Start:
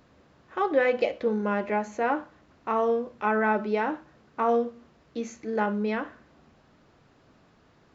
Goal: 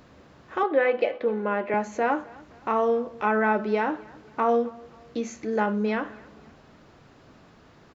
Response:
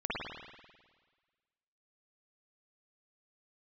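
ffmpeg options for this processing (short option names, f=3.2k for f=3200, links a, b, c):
-filter_complex "[0:a]asettb=1/sr,asplit=3[a][b][c];[a]atrim=end=0.634[d];[b]atrim=start=0.63:end=1.74,asetpts=PTS-STARTPTS,afade=t=in:d=0.004:c=qsin,afade=t=out:st=1.106:d=0.004:c=qsin,acrossover=split=240 3700:gain=0.251 1 0.126[e][f][g];[e][f][g]amix=inputs=3:normalize=0[h];[c]atrim=start=1.736[i];[d][h]acrossfade=d=0.004:c1=hsin:c2=qsin[j];[j][i]acrossfade=d=0.004:c1=qsin:c2=hsin,asplit=2[k][l];[l]acompressor=threshold=-38dB:ratio=6,volume=1dB[m];[k][m]amix=inputs=2:normalize=0,aecho=1:1:261|522|783:0.0708|0.0283|0.0113"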